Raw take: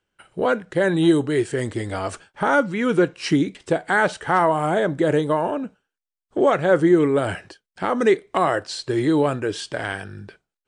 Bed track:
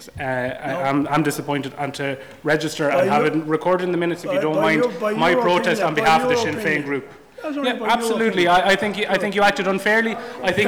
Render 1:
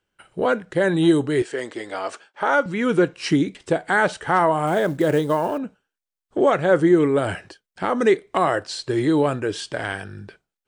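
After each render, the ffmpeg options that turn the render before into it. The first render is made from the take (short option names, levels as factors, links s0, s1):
-filter_complex "[0:a]asettb=1/sr,asplit=3[s0][s1][s2];[s0]atrim=end=1.424[s3];[s1]atrim=start=1.42:end=2.66,asetpts=PTS-STARTPTS,afade=t=in:d=0.004:c=qsin,afade=t=out:st=1.236:d=0.004:c=qsin,highpass=390,lowpass=6800[s4];[s2]atrim=start=2.656[s5];[s3][s4]acrossfade=d=0.004:c1=hsin:c2=qsin[s6];[s6][s5]acrossfade=d=0.004:c1=qsin:c2=hsin,asettb=1/sr,asplit=3[s7][s8][s9];[s7]atrim=end=4.674[s10];[s8]atrim=start=4.67:end=5.58,asetpts=PTS-STARTPTS,afade=t=in:d=0.004:c=qsin,afade=t=out:st=0.906:d=0.004:c=qsin,acrusher=bits=7:mode=log:mix=0:aa=0.000001[s11];[s9]atrim=start=5.576[s12];[s10][s11]acrossfade=d=0.004:c1=hsin:c2=qsin[s13];[s13][s12]acrossfade=d=0.004:c1=qsin:c2=hsin"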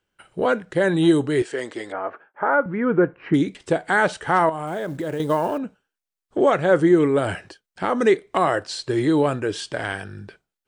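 -filter_complex "[0:a]asettb=1/sr,asplit=3[s0][s1][s2];[s0]atrim=end=1.924[s3];[s1]atrim=start=1.92:end=3.34,asetpts=PTS-STARTPTS,afade=t=in:d=0.004:c=qsin,afade=t=out:st=1.416:d=0.004:c=qsin,lowpass=f=1800:w=0.5412,lowpass=f=1800:w=1.3066[s4];[s2]atrim=start=3.336[s5];[s3][s4]acrossfade=d=0.004:c1=hsin:c2=qsin[s6];[s6][s5]acrossfade=d=0.004:c1=qsin:c2=hsin,asettb=1/sr,asplit=3[s7][s8][s9];[s7]atrim=end=4.494[s10];[s8]atrim=start=4.49:end=5.2,asetpts=PTS-STARTPTS,afade=t=in:d=0.004:c=qsin,afade=t=out:st=0.706:d=0.004:c=qsin,acompressor=threshold=0.0562:ratio=4:attack=3.2:release=140:knee=1:detection=peak[s11];[s9]atrim=start=5.196[s12];[s10][s11]acrossfade=d=0.004:c1=hsin:c2=qsin[s13];[s13][s12]acrossfade=d=0.004:c1=qsin:c2=hsin"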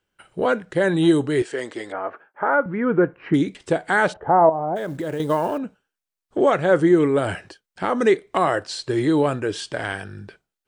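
-filter_complex "[0:a]asplit=3[s0][s1][s2];[s0]afade=t=out:st=4.12:d=0.02[s3];[s1]lowpass=f=740:t=q:w=2.2,afade=t=in:st=4.12:d=0.02,afade=t=out:st=4.75:d=0.02[s4];[s2]afade=t=in:st=4.75:d=0.02[s5];[s3][s4][s5]amix=inputs=3:normalize=0"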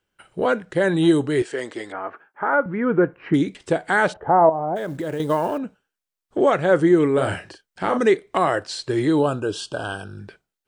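-filter_complex "[0:a]asettb=1/sr,asplit=3[s0][s1][s2];[s0]atrim=end=1.854[s3];[s1]atrim=start=1.85:end=2.53,asetpts=PTS-STARTPTS,afade=t=in:d=0.004:c=qsin,afade=t=out:st=0.676:d=0.004:c=qsin,equalizer=f=560:t=o:w=0.56:g=-6.5[s4];[s2]atrim=start=2.526[s5];[s3][s4]acrossfade=d=0.004:c1=hsin:c2=qsin[s6];[s6][s5]acrossfade=d=0.004:c1=qsin:c2=hsin,asettb=1/sr,asplit=3[s7][s8][s9];[s7]atrim=end=7.144[s10];[s8]atrim=start=7.14:end=7.99,asetpts=PTS-STARTPTS,afade=t=in:d=0.004:c=qsin,afade=t=out:st=0.846:d=0.004:c=qsin,asplit=2[s11][s12];[s12]adelay=38,volume=0.501[s13];[s11][s13]amix=inputs=2:normalize=0,atrim=end_sample=37485[s14];[s9]atrim=start=7.986[s15];[s10][s14]acrossfade=d=0.004:c1=hsin:c2=qsin[s16];[s16][s15]acrossfade=d=0.004:c1=qsin:c2=hsin,asettb=1/sr,asplit=3[s17][s18][s19];[s17]atrim=end=9.194[s20];[s18]atrim=start=9.19:end=10.2,asetpts=PTS-STARTPTS,afade=t=in:d=0.004:c=qsin,afade=t=out:st=1.006:d=0.004:c=qsin,asuperstop=centerf=2000:order=12:qfactor=2.2[s21];[s19]atrim=start=10.196[s22];[s20][s21]acrossfade=d=0.004:c1=hsin:c2=qsin[s23];[s23][s22]acrossfade=d=0.004:c1=qsin:c2=hsin"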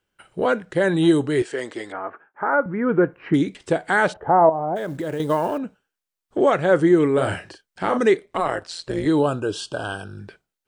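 -filter_complex "[0:a]asettb=1/sr,asplit=3[s0][s1][s2];[s0]atrim=end=1.974[s3];[s1]atrim=start=1.97:end=2.89,asetpts=PTS-STARTPTS,afade=t=in:d=0.004:c=qsin,afade=t=out:st=0.916:d=0.004:c=qsin,lowpass=2200[s4];[s2]atrim=start=2.886[s5];[s3][s4]acrossfade=d=0.004:c1=hsin:c2=qsin[s6];[s6][s5]acrossfade=d=0.004:c1=qsin:c2=hsin,asettb=1/sr,asplit=3[s7][s8][s9];[s7]atrim=end=8.254[s10];[s8]atrim=start=8.25:end=9.06,asetpts=PTS-STARTPTS,afade=t=in:d=0.004:c=qsin,afade=t=out:st=0.806:d=0.004:c=qsin,tremolo=f=170:d=0.788[s11];[s9]atrim=start=9.056[s12];[s10][s11]acrossfade=d=0.004:c1=hsin:c2=qsin[s13];[s13][s12]acrossfade=d=0.004:c1=qsin:c2=hsin"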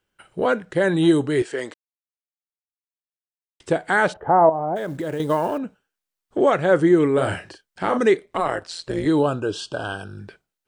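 -filter_complex "[0:a]asettb=1/sr,asplit=3[s0][s1][s2];[s0]atrim=end=9.234[s3];[s1]atrim=start=9.23:end=10.01,asetpts=PTS-STARTPTS,afade=t=in:d=0.004:c=qsin,afade=t=out:st=0.776:d=0.004:c=qsin,lowpass=7900[s4];[s2]atrim=start=10.006[s5];[s3][s4]acrossfade=d=0.004:c1=hsin:c2=qsin[s6];[s6][s5]acrossfade=d=0.004:c1=qsin:c2=hsin,asplit=3[s7][s8][s9];[s7]atrim=end=1.74,asetpts=PTS-STARTPTS,afade=t=out:st=1.736:d=0.004:c=hsin[s10];[s8]atrim=start=1.74:end=3.6,asetpts=PTS-STARTPTS,volume=0[s11];[s9]atrim=start=3.6,asetpts=PTS-STARTPTS,afade=t=in:d=0.004:c=hsin[s12];[s10][s11][s12]concat=n=3:v=0:a=1"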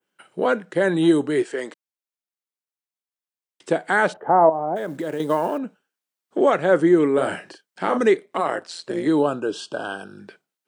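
-af "highpass=f=170:w=0.5412,highpass=f=170:w=1.3066,adynamicequalizer=threshold=0.00891:dfrequency=4100:dqfactor=0.74:tfrequency=4100:tqfactor=0.74:attack=5:release=100:ratio=0.375:range=1.5:mode=cutabove:tftype=bell"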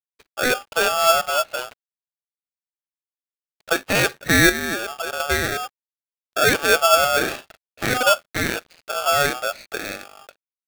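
-af "aresample=8000,aeval=exprs='sgn(val(0))*max(abs(val(0))-0.00376,0)':c=same,aresample=44100,aeval=exprs='val(0)*sgn(sin(2*PI*1000*n/s))':c=same"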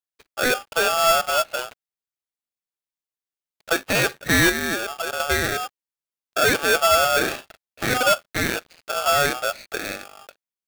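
-af "acrusher=bits=3:mode=log:mix=0:aa=0.000001,volume=4.47,asoftclip=hard,volume=0.224"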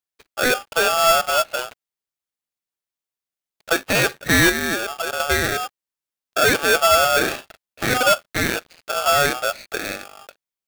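-af "volume=1.26"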